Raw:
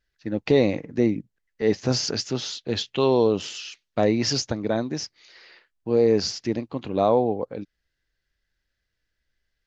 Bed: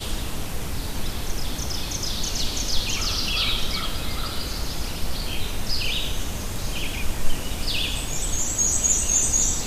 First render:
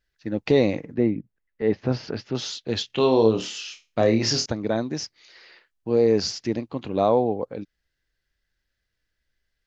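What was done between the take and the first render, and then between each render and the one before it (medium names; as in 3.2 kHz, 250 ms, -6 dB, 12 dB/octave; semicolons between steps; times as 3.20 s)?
0.94–2.35 s: distance through air 340 m; 2.87–4.46 s: flutter echo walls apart 4.6 m, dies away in 0.26 s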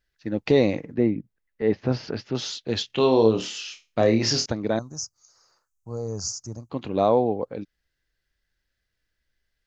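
4.79–6.70 s: FFT filter 110 Hz 0 dB, 260 Hz -15 dB, 380 Hz -17 dB, 570 Hz -11 dB, 860 Hz -8 dB, 1.3 kHz -4 dB, 1.9 kHz -29 dB, 3.4 kHz -29 dB, 6.5 kHz +9 dB, 9.9 kHz +3 dB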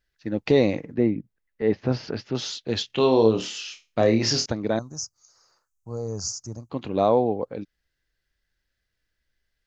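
no audible change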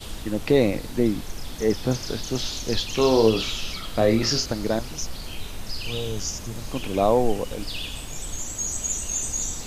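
add bed -7 dB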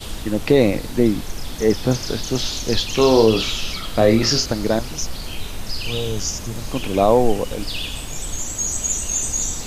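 trim +5 dB; peak limiter -3 dBFS, peak gain reduction 2.5 dB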